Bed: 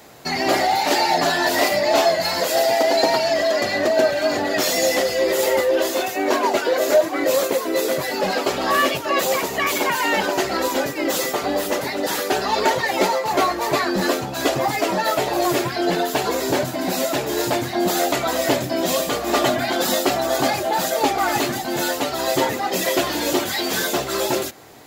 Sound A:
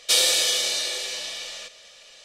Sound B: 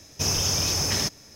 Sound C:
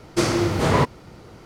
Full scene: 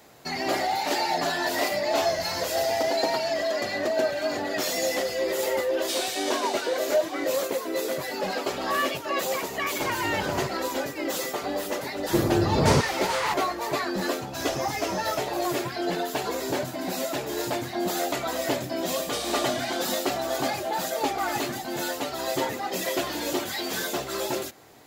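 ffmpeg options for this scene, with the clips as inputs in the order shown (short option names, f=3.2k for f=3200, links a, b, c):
-filter_complex "[2:a]asplit=2[a][b];[1:a]asplit=2[c][d];[3:a]asplit=2[e][f];[0:a]volume=-7.5dB[g];[f]acrossover=split=1000[h][i];[i]adelay=530[j];[h][j]amix=inputs=2:normalize=0[k];[a]atrim=end=1.35,asetpts=PTS-STARTPTS,volume=-17dB,afade=t=in:d=0.004:c=hsin,afade=t=out:st=1.346:d=0.004:c=hsin,adelay=1820[l];[c]atrim=end=2.24,asetpts=PTS-STARTPTS,volume=-12.5dB,afade=t=in:d=0.004:c=hsin,afade=t=out:st=2.236:d=0.004:c=hsin,adelay=5790[m];[e]atrim=end=1.45,asetpts=PTS-STARTPTS,volume=-14.5dB,afade=t=in:d=0.004:c=hsin,afade=t=out:st=1.446:d=0.004:c=hsin,adelay=9630[n];[k]atrim=end=1.45,asetpts=PTS-STARTPTS,volume=-1.5dB,afade=t=in:d=0.004:c=hsin,afade=t=out:st=1.446:d=0.004:c=hsin,adelay=11960[o];[b]atrim=end=1.35,asetpts=PTS-STARTPTS,volume=-16.5dB,afade=t=in:d=0.004:c=hsin,afade=t=out:st=1.346:d=0.004:c=hsin,adelay=14140[p];[d]atrim=end=2.24,asetpts=PTS-STARTPTS,volume=-15.5dB,afade=t=in:d=0.004:c=hsin,afade=t=out:st=2.236:d=0.004:c=hsin,adelay=19030[q];[g][l][m][n][o][p][q]amix=inputs=7:normalize=0"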